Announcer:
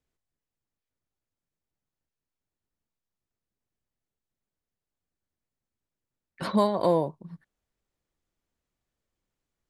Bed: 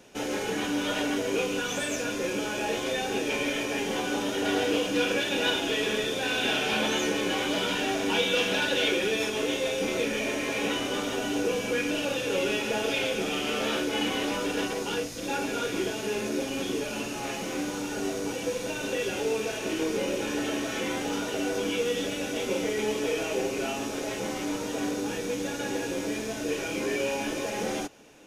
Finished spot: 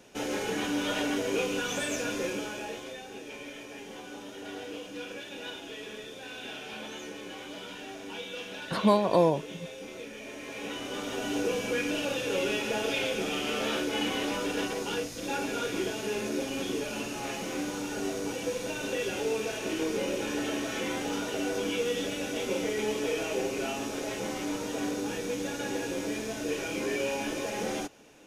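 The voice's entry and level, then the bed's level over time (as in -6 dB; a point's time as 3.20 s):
2.30 s, +0.5 dB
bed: 2.21 s -1.5 dB
3.04 s -14 dB
10.18 s -14 dB
11.34 s -2 dB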